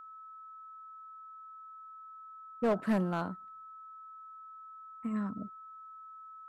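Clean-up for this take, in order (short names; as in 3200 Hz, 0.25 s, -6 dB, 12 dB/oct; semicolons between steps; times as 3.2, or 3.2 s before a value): clip repair -23.5 dBFS; notch 1300 Hz, Q 30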